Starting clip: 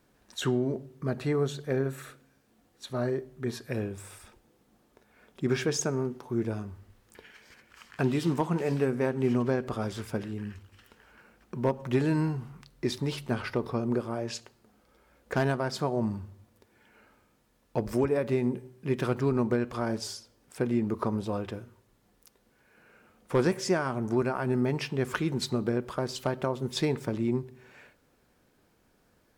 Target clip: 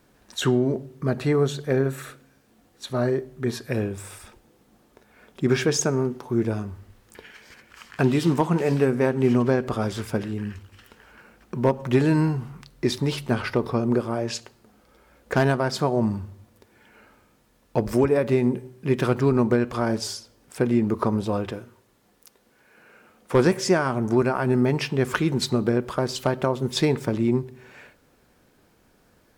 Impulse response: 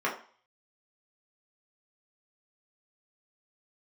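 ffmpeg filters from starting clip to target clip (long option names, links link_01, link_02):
-filter_complex "[0:a]asettb=1/sr,asplit=3[link_01][link_02][link_03];[link_01]atrim=end=21.524[link_04];[link_02]atrim=start=21.52:end=23.35,asetpts=PTS-STARTPTS,afade=type=in:duration=0.004:curve=qsin,afade=type=out:start_time=1.826:duration=0.004:curve=qsin,lowshelf=frequency=120:gain=-11[link_05];[link_03]atrim=start=23.346[link_06];[link_04][link_05]acrossfade=duration=0.004:curve1=hsin:curve2=qsin[link_07];[link_07][link_06]acrossfade=duration=0.004:curve1=qsin:curve2=hsin,volume=6.5dB"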